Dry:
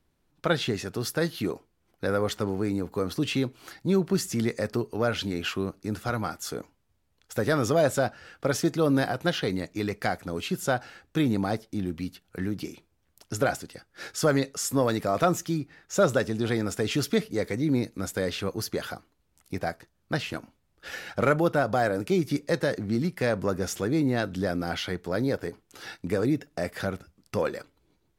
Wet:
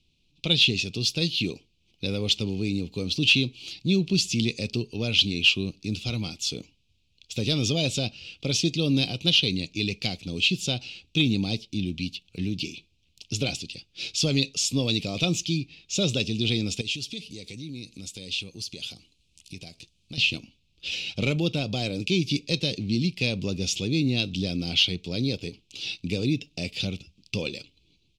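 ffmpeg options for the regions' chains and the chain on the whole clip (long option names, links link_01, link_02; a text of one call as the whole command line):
ffmpeg -i in.wav -filter_complex "[0:a]asettb=1/sr,asplit=3[link_01][link_02][link_03];[link_01]atrim=end=16.814[link_04];[link_02]atrim=start=16.81:end=20.18,asetpts=PTS-STARTPTS,afade=type=in:duration=0.004:curve=qsin,afade=type=out:start_time=3.366:duration=0.004:curve=qsin,equalizer=frequency=9300:width_type=o:width=1.1:gain=10.5,acompressor=threshold=-42dB:ratio=2.5:attack=3.2:release=140:knee=1:detection=peak[link_05];[link_03]atrim=start=20.176[link_06];[link_04][link_05]acrossfade=duration=0.004:curve1=hsin:curve2=qsin[link_07];[link_07][link_06]acrossfade=duration=0.004:curve1=qsin:curve2=hsin,firequalizer=gain_entry='entry(170,0);entry(620,-14);entry(1700,-26);entry(2500,13);entry(3700,14);entry(12000,-9)':delay=0.05:min_phase=1,acontrast=41,highshelf=frequency=5000:gain=-7,volume=-2.5dB" out.wav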